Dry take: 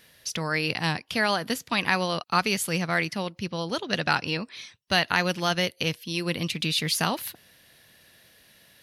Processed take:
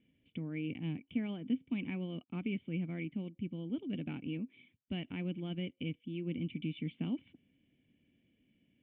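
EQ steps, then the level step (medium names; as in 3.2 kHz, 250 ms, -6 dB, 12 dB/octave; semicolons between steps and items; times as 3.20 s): cascade formant filter i; distance through air 470 m; +2.0 dB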